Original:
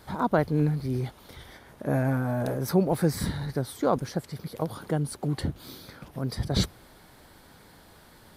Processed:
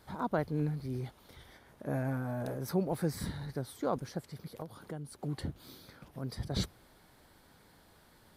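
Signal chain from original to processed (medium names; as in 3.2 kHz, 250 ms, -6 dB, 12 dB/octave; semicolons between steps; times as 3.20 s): 4.61–5.19 s: compression 2:1, threshold -35 dBFS, peak gain reduction 7.5 dB; trim -8.5 dB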